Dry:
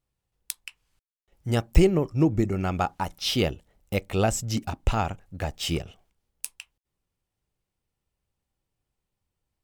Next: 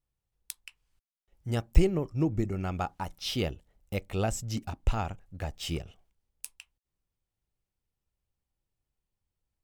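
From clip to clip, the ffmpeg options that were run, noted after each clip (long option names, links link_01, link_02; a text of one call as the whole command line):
ffmpeg -i in.wav -af "lowshelf=frequency=73:gain=7.5,volume=-7dB" out.wav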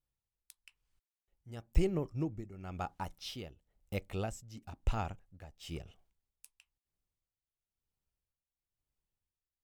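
ffmpeg -i in.wav -af "tremolo=f=1:d=0.77,volume=-4.5dB" out.wav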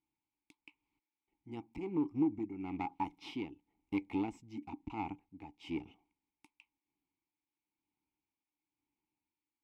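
ffmpeg -i in.wav -filter_complex "[0:a]acompressor=threshold=-34dB:ratio=8,aeval=exprs='clip(val(0),-1,0.00473)':channel_layout=same,asplit=3[link_01][link_02][link_03];[link_01]bandpass=frequency=300:width_type=q:width=8,volume=0dB[link_04];[link_02]bandpass=frequency=870:width_type=q:width=8,volume=-6dB[link_05];[link_03]bandpass=frequency=2240:width_type=q:width=8,volume=-9dB[link_06];[link_04][link_05][link_06]amix=inputs=3:normalize=0,volume=18dB" out.wav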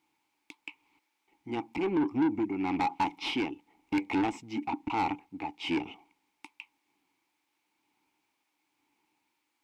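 ffmpeg -i in.wav -filter_complex "[0:a]asplit=2[link_01][link_02];[link_02]highpass=frequency=720:poles=1,volume=24dB,asoftclip=type=tanh:threshold=-21dB[link_03];[link_01][link_03]amix=inputs=2:normalize=0,lowpass=frequency=3200:poles=1,volume=-6dB,volume=2dB" out.wav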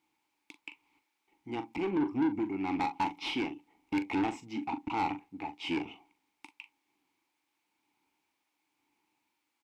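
ffmpeg -i in.wav -filter_complex "[0:a]asplit=2[link_01][link_02];[link_02]adelay=41,volume=-10.5dB[link_03];[link_01][link_03]amix=inputs=2:normalize=0,volume=-2.5dB" out.wav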